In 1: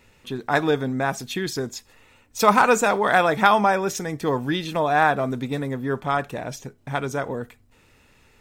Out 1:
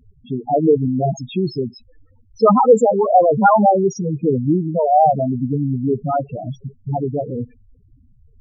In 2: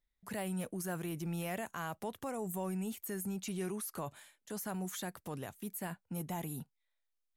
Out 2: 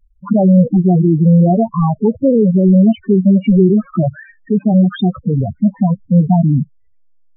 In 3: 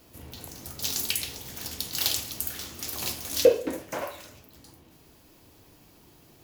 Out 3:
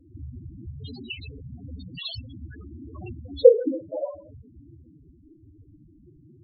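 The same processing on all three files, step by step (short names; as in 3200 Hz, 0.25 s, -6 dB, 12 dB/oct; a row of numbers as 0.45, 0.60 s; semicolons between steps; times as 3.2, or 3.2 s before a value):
half-waves squared off; low-pass opened by the level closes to 2300 Hz, open at -12.5 dBFS; loudest bins only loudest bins 4; normalise peaks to -1.5 dBFS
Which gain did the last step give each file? +5.0, +25.5, +4.0 dB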